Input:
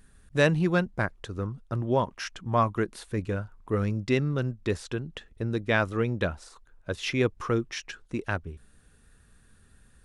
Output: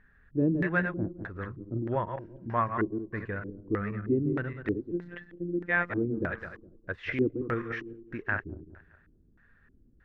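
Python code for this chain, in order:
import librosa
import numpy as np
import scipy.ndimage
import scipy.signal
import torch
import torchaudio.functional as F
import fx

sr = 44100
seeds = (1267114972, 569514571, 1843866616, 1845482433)

y = fx.reverse_delay_fb(x, sr, ms=103, feedback_pct=53, wet_db=-7.0)
y = fx.robotise(y, sr, hz=174.0, at=(4.91, 5.9))
y = fx.filter_lfo_lowpass(y, sr, shape='square', hz=1.6, low_hz=320.0, high_hz=1800.0, q=4.3)
y = y * 10.0 ** (-7.0 / 20.0)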